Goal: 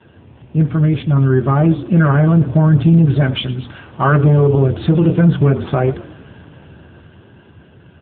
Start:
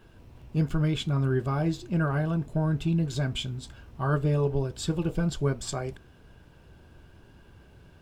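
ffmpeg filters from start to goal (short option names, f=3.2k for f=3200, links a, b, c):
-filter_complex "[0:a]asplit=3[a][b][c];[a]afade=t=out:st=1.44:d=0.02[d];[b]bandreject=f=2k:w=11,afade=t=in:st=1.44:d=0.02,afade=t=out:st=1.87:d=0.02[e];[c]afade=t=in:st=1.87:d=0.02[f];[d][e][f]amix=inputs=3:normalize=0,acrossover=split=2700[g][h];[h]acompressor=threshold=-55dB:ratio=4:attack=1:release=60[i];[g][i]amix=inputs=2:normalize=0,asettb=1/sr,asplit=3[j][k][l];[j]atrim=end=3.214[m];[k]atrim=start=3.21:end=4.12,asetpts=PTS-STARTPTS,afade=t=in:d=0.004:c=qsin,afade=t=out:st=0.906:d=0.004:c=qsin,lowshelf=f=260:g=-8.5[n];[l]atrim=start=4.116[o];[m][n]acrossfade=d=0.004:c1=hsin:c2=qsin[p];[p][o]acrossfade=d=0.004:c1=qsin:c2=hsin,bandreject=f=60:t=h:w=6,bandreject=f=120:t=h:w=6,bandreject=f=180:t=h:w=6,bandreject=f=240:t=h:w=6,bandreject=f=300:t=h:w=6,bandreject=f=360:t=h:w=6,bandreject=f=420:t=h:w=6,bandreject=f=480:t=h:w=6,dynaudnorm=f=290:g=13:m=9dB,asoftclip=type=tanh:threshold=-12dB,asplit=5[q][r][s][t][u];[r]adelay=113,afreqshift=-41,volume=-16.5dB[v];[s]adelay=226,afreqshift=-82,volume=-23.8dB[w];[t]adelay=339,afreqshift=-123,volume=-31.2dB[x];[u]adelay=452,afreqshift=-164,volume=-38.5dB[y];[q][v][w][x][y]amix=inputs=5:normalize=0,alimiter=level_in=15.5dB:limit=-1dB:release=50:level=0:latency=1,volume=-3.5dB" -ar 8000 -c:a libopencore_amrnb -b:a 7950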